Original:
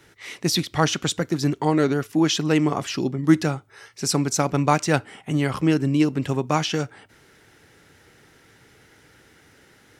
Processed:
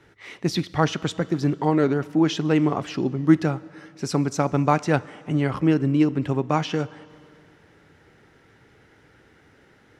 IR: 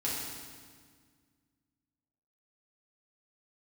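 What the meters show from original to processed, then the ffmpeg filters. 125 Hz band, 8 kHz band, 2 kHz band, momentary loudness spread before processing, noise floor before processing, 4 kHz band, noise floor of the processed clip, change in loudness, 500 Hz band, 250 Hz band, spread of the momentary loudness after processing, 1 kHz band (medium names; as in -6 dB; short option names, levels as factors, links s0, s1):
0.0 dB, -10.5 dB, -2.5 dB, 8 LU, -55 dBFS, -6.5 dB, -57 dBFS, -0.5 dB, 0.0 dB, 0.0 dB, 8 LU, -0.5 dB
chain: -filter_complex "[0:a]lowpass=f=1800:p=1,asplit=2[s0][s1];[1:a]atrim=start_sample=2205,asetrate=29988,aresample=44100,lowshelf=f=210:g=-10.5[s2];[s1][s2]afir=irnorm=-1:irlink=0,volume=0.0501[s3];[s0][s3]amix=inputs=2:normalize=0"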